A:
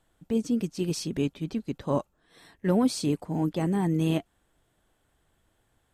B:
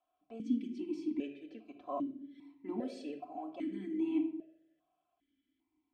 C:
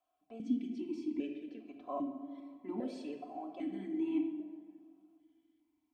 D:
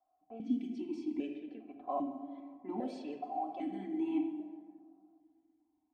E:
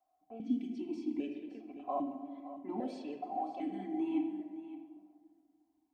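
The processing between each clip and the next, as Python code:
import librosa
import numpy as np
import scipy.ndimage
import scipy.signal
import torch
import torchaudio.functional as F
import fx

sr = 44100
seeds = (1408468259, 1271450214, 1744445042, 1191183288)

y1 = x + 0.96 * np.pad(x, (int(3.0 * sr / 1000.0), 0))[:len(x)]
y1 = fx.room_shoebox(y1, sr, seeds[0], volume_m3=2000.0, walls='furnished', distance_m=2.0)
y1 = fx.vowel_held(y1, sr, hz=2.5)
y1 = F.gain(torch.from_numpy(y1), -4.5).numpy()
y2 = fx.rev_plate(y1, sr, seeds[1], rt60_s=2.3, hf_ratio=0.55, predelay_ms=0, drr_db=9.0)
y2 = F.gain(torch.from_numpy(y2), -1.0).numpy()
y3 = fx.peak_eq(y2, sr, hz=790.0, db=13.0, octaves=0.25)
y3 = fx.env_lowpass(y3, sr, base_hz=990.0, full_db=-34.0)
y4 = y3 + 10.0 ** (-14.0 / 20.0) * np.pad(y3, (int(567 * sr / 1000.0), 0))[:len(y3)]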